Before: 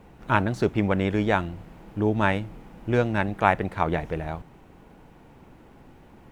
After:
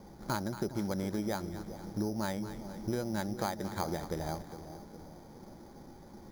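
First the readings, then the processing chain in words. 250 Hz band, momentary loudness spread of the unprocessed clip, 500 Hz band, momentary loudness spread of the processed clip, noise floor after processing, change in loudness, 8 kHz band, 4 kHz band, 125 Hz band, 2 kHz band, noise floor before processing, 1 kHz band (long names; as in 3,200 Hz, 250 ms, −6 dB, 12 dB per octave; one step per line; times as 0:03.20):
−8.5 dB, 15 LU, −11.5 dB, 17 LU, −52 dBFS, −11.5 dB, can't be measured, −6.0 dB, −11.5 dB, −16.5 dB, −52 dBFS, −13.0 dB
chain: hollow resonant body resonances 210/350/560/810 Hz, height 7 dB
downward compressor 6 to 1, threshold −27 dBFS, peak gain reduction 15.5 dB
Butterworth low-pass 2,400 Hz 48 dB per octave
on a send: echo with a time of its own for lows and highs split 760 Hz, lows 410 ms, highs 230 ms, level −11.5 dB
on the sum: bad sample-rate conversion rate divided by 8×, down filtered, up hold
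level −4.5 dB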